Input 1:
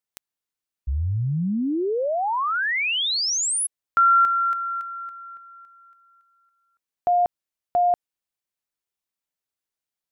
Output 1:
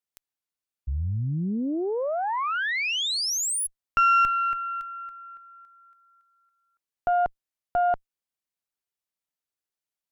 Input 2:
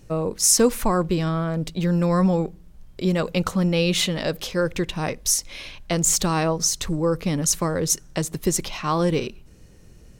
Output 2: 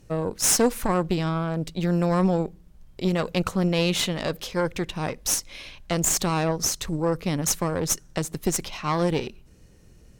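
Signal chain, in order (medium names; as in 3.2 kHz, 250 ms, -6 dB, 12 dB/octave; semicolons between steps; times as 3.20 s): valve stage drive 14 dB, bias 0.8; trim +1.5 dB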